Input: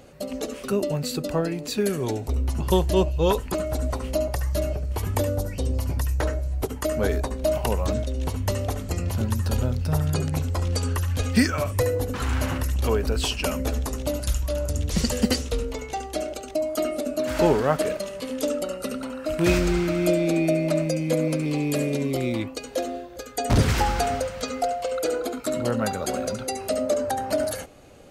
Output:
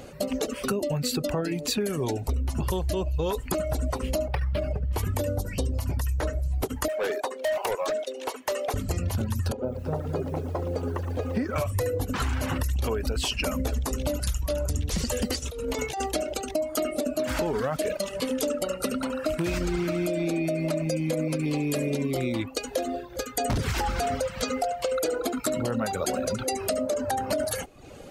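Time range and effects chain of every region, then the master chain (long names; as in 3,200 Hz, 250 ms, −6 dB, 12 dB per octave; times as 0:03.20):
0:04.28–0:04.93: notch comb filter 340 Hz + linearly interpolated sample-rate reduction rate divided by 6×
0:06.88–0:08.74: high-pass filter 410 Hz 24 dB per octave + high-shelf EQ 3,800 Hz −6 dB + hard clipping −26.5 dBFS
0:09.52–0:11.56: resonant band-pass 490 Hz, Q 1.2 + feedback echo at a low word length 115 ms, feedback 80%, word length 9 bits, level −10.5 dB
0:15.39–0:16.12: high-pass filter 93 Hz 6 dB per octave + high-shelf EQ 10,000 Hz +6 dB + compressor whose output falls as the input rises −34 dBFS
whole clip: reverb reduction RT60 0.56 s; brickwall limiter −17.5 dBFS; downward compressor, threshold −30 dBFS; level +6 dB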